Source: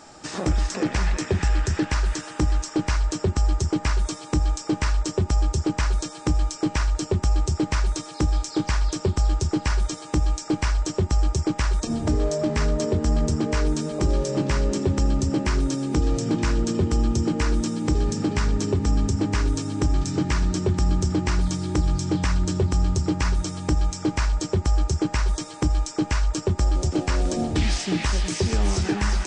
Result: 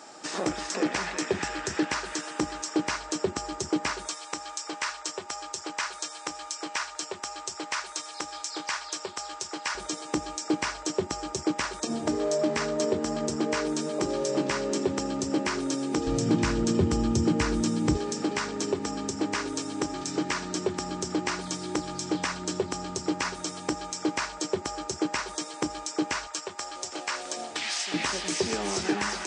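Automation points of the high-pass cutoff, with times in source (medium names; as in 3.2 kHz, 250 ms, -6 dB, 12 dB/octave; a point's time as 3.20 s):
290 Hz
from 4.08 s 790 Hz
from 9.75 s 290 Hz
from 16.07 s 99 Hz
from 17.97 s 340 Hz
from 26.27 s 840 Hz
from 27.94 s 290 Hz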